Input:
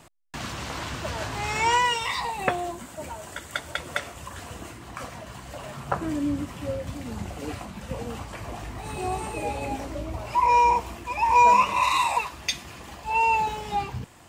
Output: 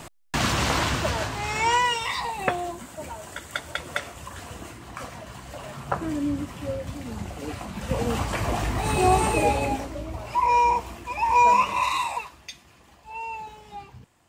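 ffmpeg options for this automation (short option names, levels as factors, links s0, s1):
-af "volume=10.6,afade=t=out:st=0.69:d=0.67:silence=0.298538,afade=t=in:st=7.55:d=0.72:silence=0.316228,afade=t=out:st=9.32:d=0.58:silence=0.281838,afade=t=out:st=11.76:d=0.73:silence=0.266073"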